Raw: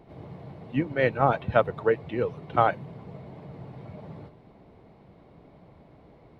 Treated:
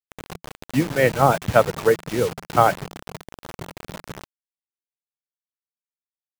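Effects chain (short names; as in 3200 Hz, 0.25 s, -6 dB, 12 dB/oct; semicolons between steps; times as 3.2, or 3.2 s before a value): bit-crush 6-bit; dynamic EQ 170 Hz, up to +3 dB, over -51 dBFS, Q 5.6; gain +5.5 dB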